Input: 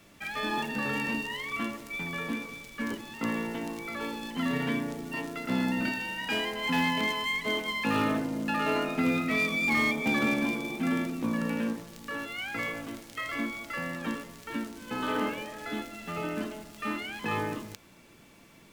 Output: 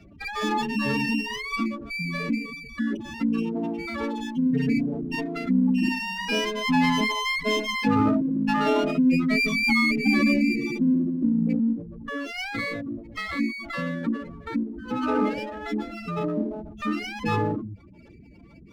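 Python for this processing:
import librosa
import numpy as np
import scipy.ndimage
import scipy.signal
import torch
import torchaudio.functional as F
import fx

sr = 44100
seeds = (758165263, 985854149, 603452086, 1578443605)

y = fx.peak_eq(x, sr, hz=61.0, db=10.5, octaves=1.1)
y = fx.spec_gate(y, sr, threshold_db=-10, keep='strong')
y = fx.dynamic_eq(y, sr, hz=1600.0, q=1.9, threshold_db=-49.0, ratio=4.0, max_db=-5)
y = fx.running_max(y, sr, window=5)
y = y * 10.0 ** (8.0 / 20.0)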